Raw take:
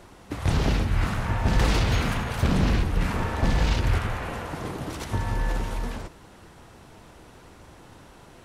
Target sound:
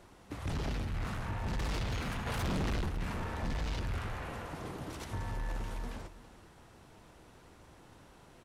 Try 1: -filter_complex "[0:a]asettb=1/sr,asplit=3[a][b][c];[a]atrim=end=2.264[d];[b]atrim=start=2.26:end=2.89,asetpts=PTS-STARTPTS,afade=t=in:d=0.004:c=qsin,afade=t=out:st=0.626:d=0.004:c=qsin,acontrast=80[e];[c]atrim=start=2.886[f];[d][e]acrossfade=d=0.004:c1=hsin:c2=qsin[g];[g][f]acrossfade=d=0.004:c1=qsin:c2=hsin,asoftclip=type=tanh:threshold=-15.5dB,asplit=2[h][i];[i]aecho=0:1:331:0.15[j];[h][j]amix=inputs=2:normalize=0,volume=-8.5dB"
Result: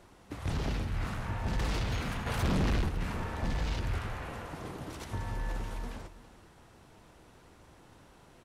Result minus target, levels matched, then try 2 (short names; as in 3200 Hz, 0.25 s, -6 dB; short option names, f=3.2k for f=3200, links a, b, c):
soft clip: distortion -5 dB
-filter_complex "[0:a]asettb=1/sr,asplit=3[a][b][c];[a]atrim=end=2.264[d];[b]atrim=start=2.26:end=2.89,asetpts=PTS-STARTPTS,afade=t=in:d=0.004:c=qsin,afade=t=out:st=0.626:d=0.004:c=qsin,acontrast=80[e];[c]atrim=start=2.886[f];[d][e]acrossfade=d=0.004:c1=hsin:c2=qsin[g];[g][f]acrossfade=d=0.004:c1=qsin:c2=hsin,asoftclip=type=tanh:threshold=-22dB,asplit=2[h][i];[i]aecho=0:1:331:0.15[j];[h][j]amix=inputs=2:normalize=0,volume=-8.5dB"